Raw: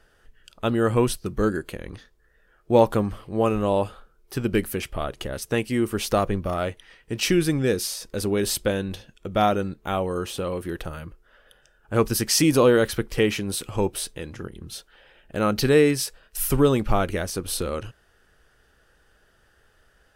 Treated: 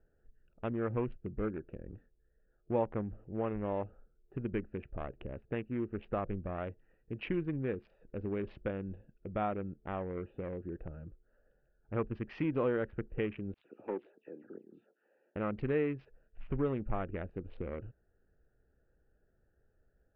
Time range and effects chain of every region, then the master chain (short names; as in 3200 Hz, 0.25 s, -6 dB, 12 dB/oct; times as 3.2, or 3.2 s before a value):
13.54–15.36 HPF 250 Hz 24 dB/oct + dispersion lows, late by 0.107 s, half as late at 2800 Hz
whole clip: Wiener smoothing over 41 samples; steep low-pass 2600 Hz 36 dB/oct; compressor 1.5:1, threshold -29 dBFS; gain -8.5 dB